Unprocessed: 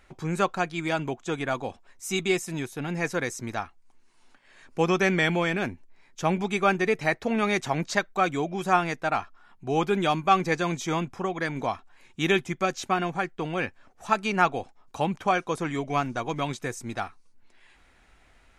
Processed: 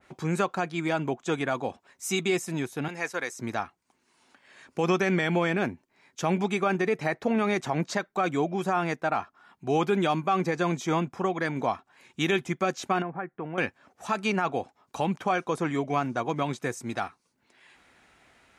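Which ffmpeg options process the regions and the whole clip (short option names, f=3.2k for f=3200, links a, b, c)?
-filter_complex "[0:a]asettb=1/sr,asplit=3[a][b][c];[a]atrim=end=2.884[d];[b]atrim=start=2.88:end=3.39,asetpts=PTS-STARTPTS,afade=t=in:d=0.004:c=qsin,afade=t=out:st=0.506:d=0.004:c=qsin,agate=range=-33dB:threshold=-35dB:ratio=3:release=100:detection=peak,highpass=f=890:p=1[e];[c]atrim=start=3.386[f];[d][e]acrossfade=d=0.004:c1=hsin:c2=qsin[g];[g][f]acrossfade=d=0.004:c1=qsin:c2=hsin,asettb=1/sr,asplit=3[h][i][j];[h]atrim=end=13.024[k];[i]atrim=start=13.02:end=13.58,asetpts=PTS-STARTPTS,afade=t=in:d=0.004:c=qsin,afade=t=out:st=0.556:d=0.004:c=qsin,lowpass=f=2k:w=0.5412,lowpass=f=2k:w=1.3066,acompressor=threshold=-43dB:ratio=1.5:attack=3.2:release=140:knee=1:detection=peak[l];[j]atrim=start=13.576[m];[k][l]acrossfade=d=0.004:c1=hsin:c2=qsin[n];[n][m]acrossfade=d=0.004:c1=qsin:c2=hsin,alimiter=limit=-17dB:level=0:latency=1:release=51,highpass=120,adynamicequalizer=threshold=0.00708:dfrequency=1800:dqfactor=0.7:tfrequency=1800:tqfactor=0.7:attack=5:release=100:ratio=0.375:range=3:mode=cutabove:tftype=highshelf,volume=2dB"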